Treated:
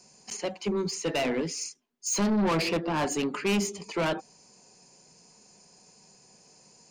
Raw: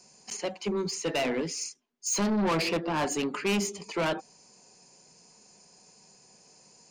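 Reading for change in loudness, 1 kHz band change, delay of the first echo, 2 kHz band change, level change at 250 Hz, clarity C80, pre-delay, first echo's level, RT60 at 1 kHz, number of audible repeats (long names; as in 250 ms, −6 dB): +1.0 dB, 0.0 dB, no echo audible, 0.0 dB, +1.5 dB, no reverb audible, no reverb audible, no echo audible, no reverb audible, no echo audible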